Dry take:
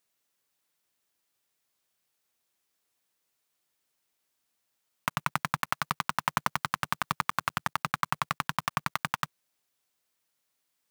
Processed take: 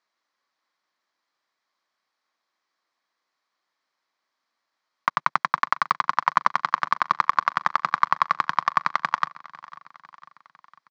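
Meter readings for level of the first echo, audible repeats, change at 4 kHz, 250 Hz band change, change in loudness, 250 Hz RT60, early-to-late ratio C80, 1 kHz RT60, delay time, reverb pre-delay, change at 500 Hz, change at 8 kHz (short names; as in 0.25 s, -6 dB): -20.0 dB, 3, 0.0 dB, -3.5 dB, +8.0 dB, none, none, none, 0.501 s, none, +4.0 dB, n/a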